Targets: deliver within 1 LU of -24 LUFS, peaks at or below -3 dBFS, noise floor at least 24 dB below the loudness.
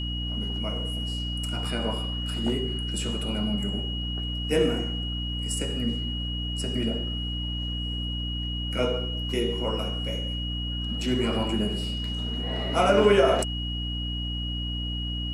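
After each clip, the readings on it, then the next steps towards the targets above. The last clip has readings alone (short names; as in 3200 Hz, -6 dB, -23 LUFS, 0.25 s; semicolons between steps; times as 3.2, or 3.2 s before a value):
hum 60 Hz; harmonics up to 300 Hz; hum level -29 dBFS; steady tone 2900 Hz; tone level -33 dBFS; loudness -27.5 LUFS; peak -8.5 dBFS; loudness target -24.0 LUFS
-> de-hum 60 Hz, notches 5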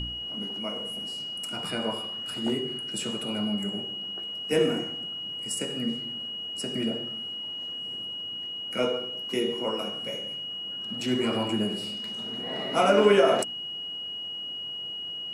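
hum none; steady tone 2900 Hz; tone level -33 dBFS
-> notch 2900 Hz, Q 30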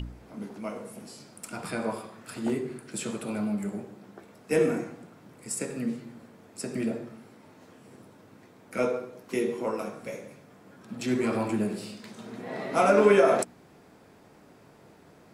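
steady tone none; loudness -29.0 LUFS; peak -9.0 dBFS; loudness target -24.0 LUFS
-> gain +5 dB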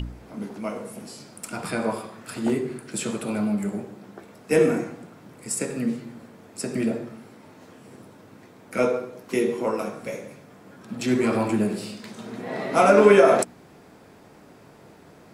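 loudness -24.0 LUFS; peak -4.0 dBFS; noise floor -50 dBFS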